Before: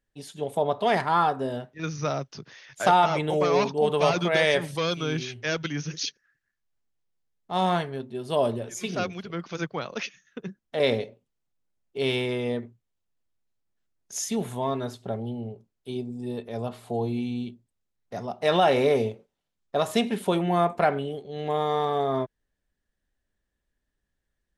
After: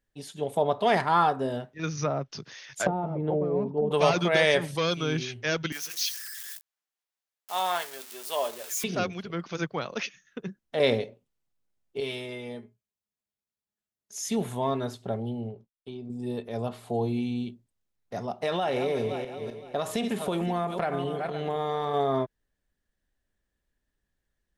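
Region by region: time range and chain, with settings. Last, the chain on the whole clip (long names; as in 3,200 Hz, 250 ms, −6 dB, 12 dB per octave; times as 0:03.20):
0:01.97–0:03.91: treble cut that deepens with the level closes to 370 Hz, closed at −20 dBFS + high-shelf EQ 4,100 Hz +10 dB
0:05.72–0:08.84: spike at every zero crossing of −28 dBFS + high-pass filter 780 Hz
0:12.00–0:14.25: high-pass filter 49 Hz + high-shelf EQ 5,000 Hz +5 dB + tuned comb filter 210 Hz, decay 0.17 s, mix 80%
0:15.50–0:16.10: downward expander −57 dBFS + downward compressor, threshold −35 dBFS + low-pass filter 4,500 Hz
0:18.22–0:21.94: feedback delay that plays each chunk backwards 257 ms, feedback 46%, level −11.5 dB + downward compressor 5 to 1, threshold −24 dBFS
whole clip: no processing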